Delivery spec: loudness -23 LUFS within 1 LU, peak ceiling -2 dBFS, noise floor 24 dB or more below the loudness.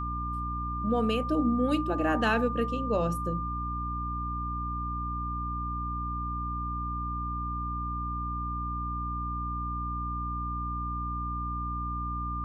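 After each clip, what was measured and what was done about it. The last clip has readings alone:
hum 60 Hz; harmonics up to 300 Hz; hum level -33 dBFS; steady tone 1200 Hz; tone level -33 dBFS; loudness -31.5 LUFS; peak -13.5 dBFS; loudness target -23.0 LUFS
-> de-hum 60 Hz, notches 5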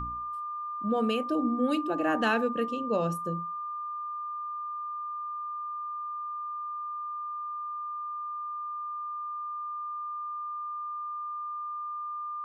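hum none; steady tone 1200 Hz; tone level -33 dBFS
-> notch 1200 Hz, Q 30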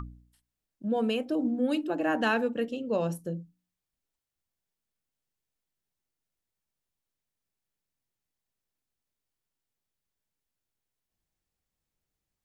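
steady tone none; loudness -29.5 LUFS; peak -15.0 dBFS; loudness target -23.0 LUFS
-> gain +6.5 dB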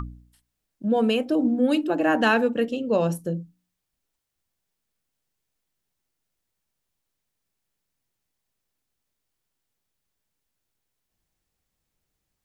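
loudness -23.0 LUFS; peak -8.5 dBFS; noise floor -81 dBFS

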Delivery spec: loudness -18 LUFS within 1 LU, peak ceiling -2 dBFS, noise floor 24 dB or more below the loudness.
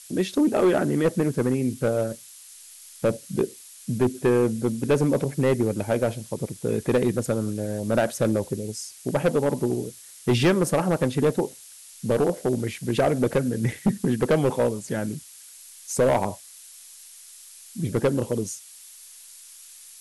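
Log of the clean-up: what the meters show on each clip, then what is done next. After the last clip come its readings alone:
clipped 1.4%; flat tops at -14.5 dBFS; noise floor -47 dBFS; noise floor target -49 dBFS; loudness -24.5 LUFS; peak -14.5 dBFS; loudness target -18.0 LUFS
-> clip repair -14.5 dBFS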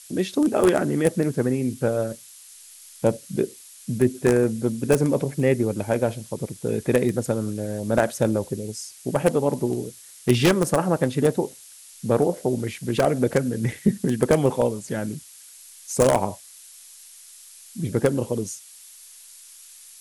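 clipped 0.0%; noise floor -47 dBFS; noise floor target -48 dBFS
-> denoiser 6 dB, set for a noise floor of -47 dBFS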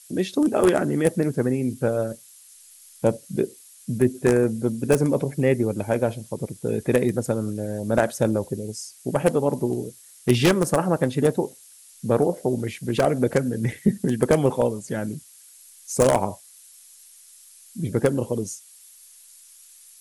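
noise floor -50 dBFS; loudness -23.5 LUFS; peak -5.0 dBFS; loudness target -18.0 LUFS
-> gain +5.5 dB; limiter -2 dBFS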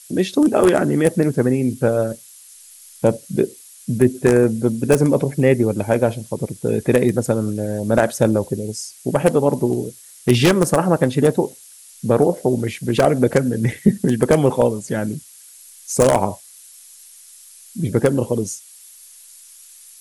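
loudness -18.5 LUFS; peak -2.0 dBFS; noise floor -44 dBFS

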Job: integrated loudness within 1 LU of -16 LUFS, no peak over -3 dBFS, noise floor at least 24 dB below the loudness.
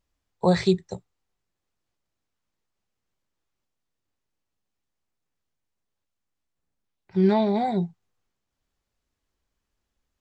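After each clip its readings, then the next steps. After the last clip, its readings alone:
loudness -24.0 LUFS; peak -9.0 dBFS; loudness target -16.0 LUFS
-> gain +8 dB; limiter -3 dBFS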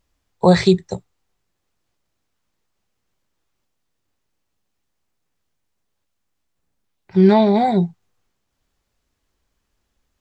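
loudness -16.0 LUFS; peak -3.0 dBFS; noise floor -74 dBFS

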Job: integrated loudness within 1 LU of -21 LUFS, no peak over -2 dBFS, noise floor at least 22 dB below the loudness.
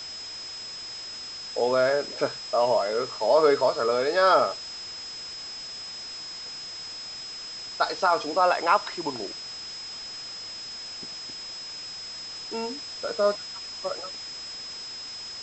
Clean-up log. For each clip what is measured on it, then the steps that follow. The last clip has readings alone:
steady tone 5100 Hz; tone level -36 dBFS; noise floor -38 dBFS; noise floor target -50 dBFS; loudness -27.5 LUFS; peak -7.5 dBFS; loudness target -21.0 LUFS
-> notch 5100 Hz, Q 30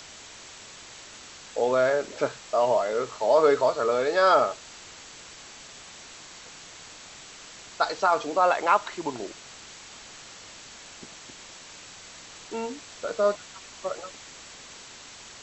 steady tone none; noise floor -46 dBFS; noise floor target -47 dBFS
-> denoiser 6 dB, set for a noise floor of -46 dBFS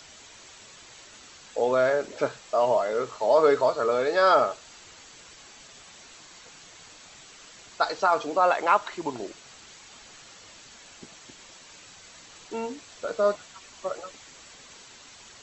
noise floor -50 dBFS; loudness -25.0 LUFS; peak -7.5 dBFS; loudness target -21.0 LUFS
-> gain +4 dB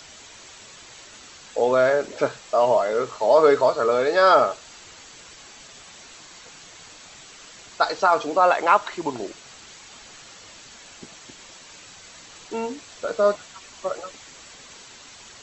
loudness -21.0 LUFS; peak -3.5 dBFS; noise floor -46 dBFS

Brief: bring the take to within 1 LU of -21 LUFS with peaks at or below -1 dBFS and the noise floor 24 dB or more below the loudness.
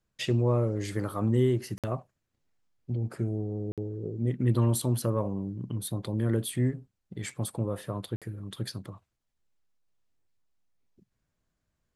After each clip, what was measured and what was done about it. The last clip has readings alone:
dropouts 3; longest dropout 57 ms; loudness -30.5 LUFS; peak -13.5 dBFS; loudness target -21.0 LUFS
-> interpolate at 1.78/3.72/8.16, 57 ms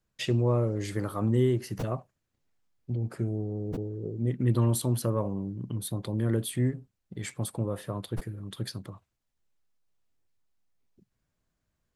dropouts 0; loudness -30.5 LUFS; peak -13.5 dBFS; loudness target -21.0 LUFS
-> gain +9.5 dB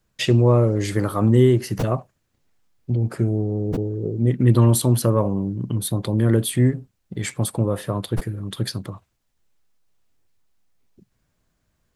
loudness -21.0 LUFS; peak -4.0 dBFS; noise floor -71 dBFS

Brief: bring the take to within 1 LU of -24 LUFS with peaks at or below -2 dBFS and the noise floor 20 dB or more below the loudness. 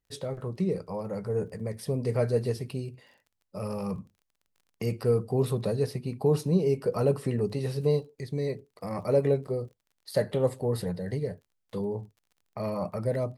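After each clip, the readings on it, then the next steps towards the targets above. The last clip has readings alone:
ticks 29/s; loudness -30.0 LUFS; peak -12.5 dBFS; loudness target -24.0 LUFS
-> de-click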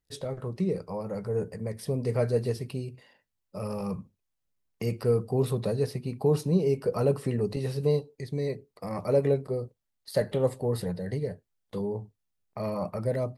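ticks 0.15/s; loudness -30.0 LUFS; peak -12.5 dBFS; loudness target -24.0 LUFS
-> gain +6 dB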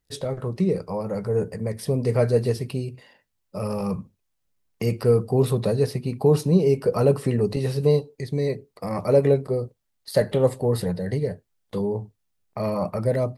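loudness -24.0 LUFS; peak -6.5 dBFS; noise floor -75 dBFS

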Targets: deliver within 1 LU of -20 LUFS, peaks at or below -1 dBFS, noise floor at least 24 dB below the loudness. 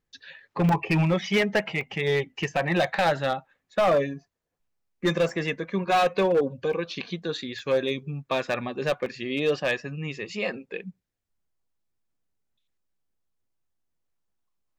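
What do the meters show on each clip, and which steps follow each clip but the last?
clipped 1.3%; flat tops at -16.5 dBFS; dropouts 6; longest dropout 2.1 ms; loudness -26.0 LUFS; peak -16.5 dBFS; loudness target -20.0 LUFS
-> clip repair -16.5 dBFS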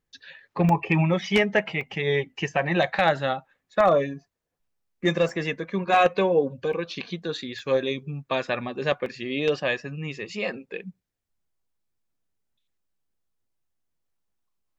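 clipped 0.0%; dropouts 6; longest dropout 2.1 ms
-> interpolate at 0.69/1.81/5.29/6.73/7.59/9.06, 2.1 ms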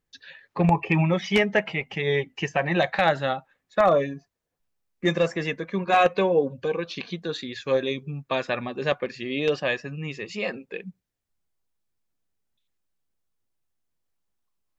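dropouts 0; loudness -25.0 LUFS; peak -7.0 dBFS; loudness target -20.0 LUFS
-> gain +5 dB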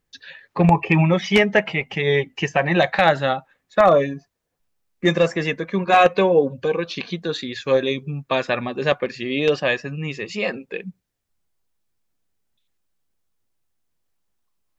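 loudness -20.0 LUFS; peak -2.0 dBFS; noise floor -75 dBFS

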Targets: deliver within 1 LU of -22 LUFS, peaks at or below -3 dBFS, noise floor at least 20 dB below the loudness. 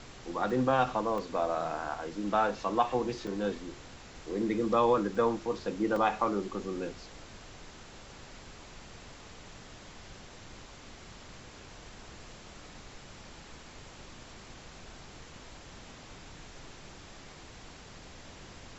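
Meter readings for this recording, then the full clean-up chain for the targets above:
dropouts 5; longest dropout 2.2 ms; noise floor -50 dBFS; noise floor target -51 dBFS; loudness -31.0 LUFS; peak -13.5 dBFS; loudness target -22.0 LUFS
-> interpolate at 0.5/1.18/3.27/5.15/5.96, 2.2 ms; noise print and reduce 6 dB; gain +9 dB

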